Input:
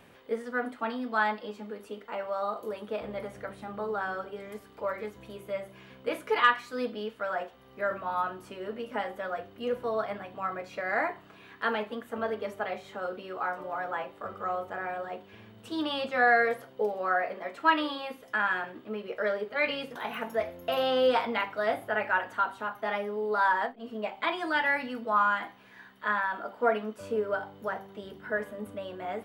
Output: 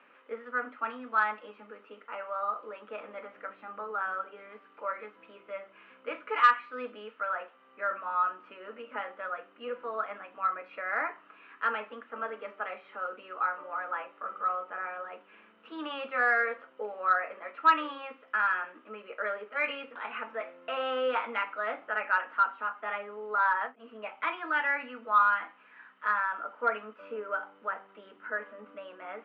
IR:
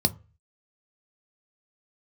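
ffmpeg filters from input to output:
-af "highpass=frequency=280:width=0.5412,highpass=frequency=280:width=1.3066,equalizer=frequency=380:width_type=q:width=4:gain=-9,equalizer=frequency=710:width_type=q:width=4:gain=-6,equalizer=frequency=1300:width_type=q:width=4:gain=10,equalizer=frequency=2600:width_type=q:width=4:gain=6,lowpass=frequency=2700:width=0.5412,lowpass=frequency=2700:width=1.3066,acontrast=22,volume=-8.5dB"

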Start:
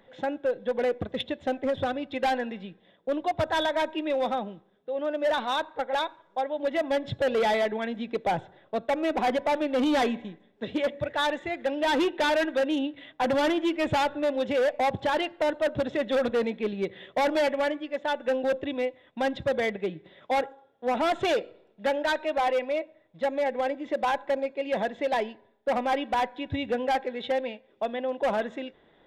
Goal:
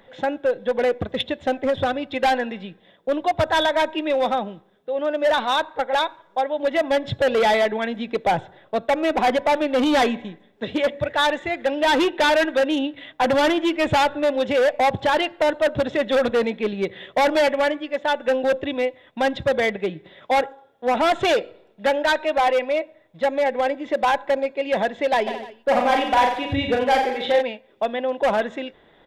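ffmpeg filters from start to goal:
ffmpeg -i in.wav -filter_complex "[0:a]equalizer=frequency=260:width=0.61:gain=-3,asplit=3[link_01][link_02][link_03];[link_01]afade=type=out:start_time=25.26:duration=0.02[link_04];[link_02]aecho=1:1:40|88|145.6|214.7|297.7:0.631|0.398|0.251|0.158|0.1,afade=type=in:start_time=25.26:duration=0.02,afade=type=out:start_time=27.41:duration=0.02[link_05];[link_03]afade=type=in:start_time=27.41:duration=0.02[link_06];[link_04][link_05][link_06]amix=inputs=3:normalize=0,volume=7.5dB" out.wav

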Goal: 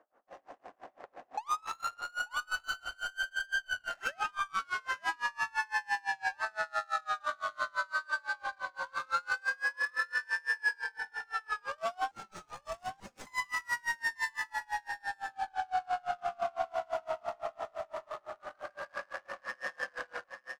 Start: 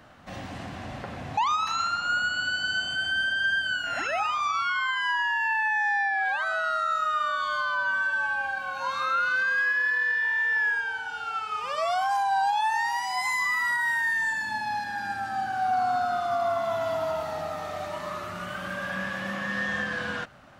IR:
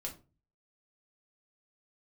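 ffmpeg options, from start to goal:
-filter_complex "[0:a]highpass=frequency=410:width=0.5412,highpass=frequency=410:width=1.3066,asettb=1/sr,asplit=3[link_01][link_02][link_03];[link_01]atrim=end=12.114[link_04];[link_02]atrim=start=12.11:end=13.27,asetpts=PTS-STARTPTS,afade=type=in:duration=0.004:curve=qsin,afade=type=out:start_time=1.156:duration=0.004:curve=qsin,aeval=exprs='0.0224*(abs(mod(val(0)/0.0224+3,4)-2)-1)':channel_layout=same[link_05];[link_03]atrim=start=13.266[link_06];[link_04][link_05]acrossfade=duration=0.004:curve1=hsin:curve2=qsin[link_07];[link_07][link_06]acrossfade=duration=0.004:curve1=qsin:curve2=hsin,aexciter=amount=5.2:drive=7.4:freq=5400,adynamicsmooth=sensitivity=2.5:basefreq=780,aecho=1:1:888:0.447,aeval=exprs='val(0)*pow(10,-32*(0.5-0.5*cos(2*PI*5.9*n/s))/20)':channel_layout=same,volume=-2dB"

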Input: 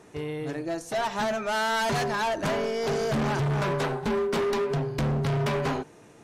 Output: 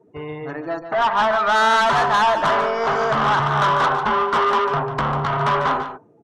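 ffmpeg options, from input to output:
ffmpeg -i in.wav -filter_complex "[0:a]asettb=1/sr,asplit=3[link_01][link_02][link_03];[link_01]atrim=end=0.794[link_04];[link_02]atrim=start=0.79:end=1.74,asetpts=PTS-STARTPTS,afade=type=in:duration=0.004:curve=qsin,afade=type=out:start_time=0.946:duration=0.004:curve=qsin,lowpass=frequency=2800:width=0.5412,lowpass=frequency=2800:width=1.3066[link_05];[link_03]atrim=start=1.736[link_06];[link_04][link_05]acrossfade=duration=0.004:curve1=hsin:curve2=qsin[link_07];[link_07][link_06]acrossfade=duration=0.004:curve1=qsin:curve2=hsin,afftdn=noise_reduction=29:noise_floor=-46,equalizer=frequency=1200:width_type=o:width=1.2:gain=12,acrossover=split=750|1500[link_08][link_09][link_10];[link_09]dynaudnorm=framelen=370:gausssize=5:maxgain=13.5dB[link_11];[link_08][link_11][link_10]amix=inputs=3:normalize=0,asoftclip=type=tanh:threshold=-13.5dB,asplit=2[link_12][link_13];[link_13]aecho=0:1:146:0.316[link_14];[link_12][link_14]amix=inputs=2:normalize=0" out.wav

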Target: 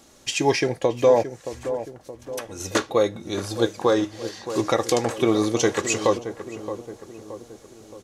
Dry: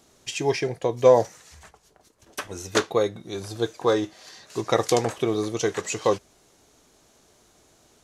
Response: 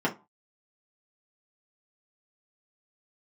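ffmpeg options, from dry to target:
-filter_complex "[0:a]aecho=1:1:3.6:0.31,alimiter=limit=-12.5dB:level=0:latency=1:release=340,asplit=3[link_01][link_02][link_03];[link_01]afade=type=out:start_time=1.22:duration=0.02[link_04];[link_02]acompressor=threshold=-38dB:ratio=6,afade=type=in:start_time=1.22:duration=0.02,afade=type=out:start_time=2.59:duration=0.02[link_05];[link_03]afade=type=in:start_time=2.59:duration=0.02[link_06];[link_04][link_05][link_06]amix=inputs=3:normalize=0,asplit=2[link_07][link_08];[link_08]adelay=622,lowpass=frequency=1200:poles=1,volume=-10.5dB,asplit=2[link_09][link_10];[link_10]adelay=622,lowpass=frequency=1200:poles=1,volume=0.54,asplit=2[link_11][link_12];[link_12]adelay=622,lowpass=frequency=1200:poles=1,volume=0.54,asplit=2[link_13][link_14];[link_14]adelay=622,lowpass=frequency=1200:poles=1,volume=0.54,asplit=2[link_15][link_16];[link_16]adelay=622,lowpass=frequency=1200:poles=1,volume=0.54,asplit=2[link_17][link_18];[link_18]adelay=622,lowpass=frequency=1200:poles=1,volume=0.54[link_19];[link_07][link_09][link_11][link_13][link_15][link_17][link_19]amix=inputs=7:normalize=0,volume=5dB"

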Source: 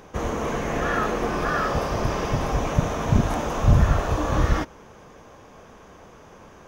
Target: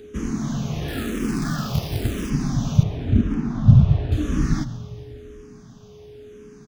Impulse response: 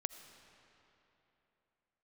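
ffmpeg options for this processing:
-filter_complex "[0:a]equalizer=frequency=125:width_type=o:width=1:gain=8,equalizer=frequency=250:width_type=o:width=1:gain=9,equalizer=frequency=500:width_type=o:width=1:gain=-11,equalizer=frequency=1000:width_type=o:width=1:gain=-9,equalizer=frequency=2000:width_type=o:width=1:gain=-4,equalizer=frequency=4000:width_type=o:width=1:gain=6,aeval=exprs='val(0)+0.01*sin(2*PI*420*n/s)':channel_layout=same,asettb=1/sr,asplit=3[link_01][link_02][link_03];[link_01]atrim=end=0.884[link_04];[link_02]atrim=start=0.88:end=2.3,asetpts=PTS-STARTPTS,afade=type=in:duration=0.004:curve=qsin,afade=type=out:start_time=1.416:duration=0.004:curve=qsin,acrusher=bits=3:mode=log:mix=0:aa=0.000001[link_05];[link_03]atrim=start=2.296[link_06];[link_04][link_05]acrossfade=duration=0.004:curve1=hsin:curve2=qsin[link_07];[link_07][link_06]acrossfade=duration=0.004:curve1=qsin:curve2=hsin,asettb=1/sr,asplit=3[link_08][link_09][link_10];[link_08]atrim=end=2.834[link_11];[link_09]atrim=start=2.83:end=4.12,asetpts=PTS-STARTPTS,afade=type=in:duration=0.004:curve=qsin,afade=type=out:start_time=1.286:duration=0.004:curve=qsin,adynamicsmooth=sensitivity=1:basefreq=2200[link_12];[link_10]atrim=start=4.116[link_13];[link_11][link_12]acrossfade=duration=0.004:curve1=hsin:curve2=qsin[link_14];[link_14][link_13]acrossfade=duration=0.004:curve1=qsin:curve2=hsin,aecho=1:1:135|270|405|540|675:0.119|0.0642|0.0347|0.0187|0.0101,asplit=2[link_15][link_16];[1:a]atrim=start_sample=2205[link_17];[link_16][link_17]afir=irnorm=-1:irlink=0,volume=4dB[link_18];[link_15][link_18]amix=inputs=2:normalize=0,asplit=2[link_19][link_20];[link_20]afreqshift=-0.96[link_21];[link_19][link_21]amix=inputs=2:normalize=1,volume=-7dB"

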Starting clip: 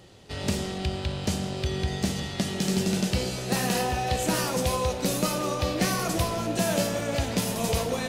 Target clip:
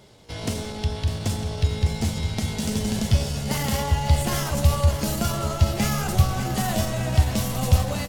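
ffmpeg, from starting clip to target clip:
ffmpeg -i in.wav -af "aecho=1:1:599|1198|1797|2396|2995:0.299|0.149|0.0746|0.0373|0.0187,asetrate=49501,aresample=44100,atempo=0.890899,asubboost=boost=7.5:cutoff=110" out.wav

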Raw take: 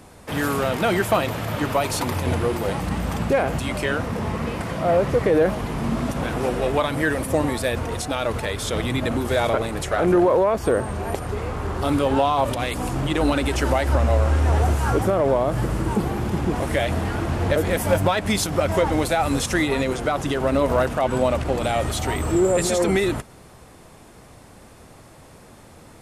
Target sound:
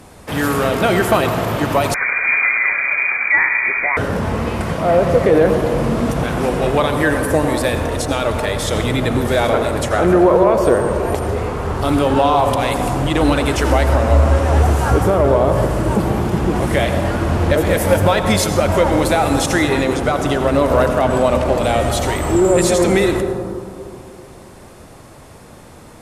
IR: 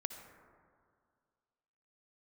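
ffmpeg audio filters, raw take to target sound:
-filter_complex "[1:a]atrim=start_sample=2205,asetrate=32634,aresample=44100[link_01];[0:a][link_01]afir=irnorm=-1:irlink=0,asettb=1/sr,asplit=3[link_02][link_03][link_04];[link_02]atrim=end=1.944[link_05];[link_03]atrim=start=1.94:end=3.97,asetpts=PTS-STARTPTS,afade=type=in:duration=0.004:curve=qsin,afade=type=out:start_time=2.026:duration=0.004:curve=qsin,lowpass=frequency=2100:width_type=q:width=0.5098,lowpass=frequency=2100:width_type=q:width=0.6013,lowpass=frequency=2100:width_type=q:width=0.9,lowpass=frequency=2100:width_type=q:width=2.563,afreqshift=-2500[link_06];[link_04]atrim=start=3.966[link_07];[link_05][link_06]acrossfade=duration=0.004:curve1=hsin:curve2=qsin[link_08];[link_08][link_07]acrossfade=duration=0.004:curve1=qsin:curve2=hsin,volume=5dB"

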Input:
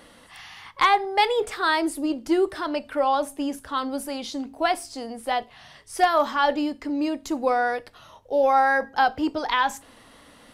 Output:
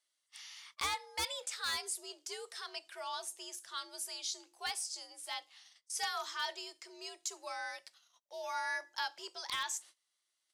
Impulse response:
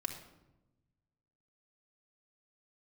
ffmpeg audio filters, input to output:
-filter_complex "[0:a]agate=range=-23dB:threshold=-46dB:ratio=16:detection=peak,bandpass=frequency=6700:width_type=q:width=1.6:csg=0,afreqshift=74,acrossover=split=6600[link_01][link_02];[link_01]aeval=exprs='0.0316*(abs(mod(val(0)/0.0316+3,4)-2)-1)':channel_layout=same[link_03];[link_03][link_02]amix=inputs=2:normalize=0,volume=2.5dB"

